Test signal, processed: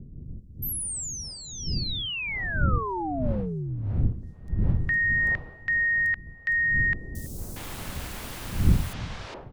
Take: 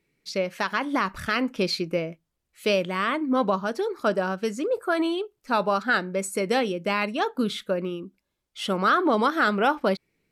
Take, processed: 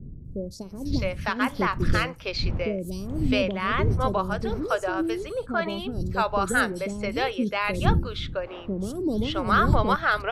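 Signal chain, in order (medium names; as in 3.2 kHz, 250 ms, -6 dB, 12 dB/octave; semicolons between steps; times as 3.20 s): wind noise 110 Hz -30 dBFS; three bands offset in time lows, highs, mids 250/660 ms, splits 460/5700 Hz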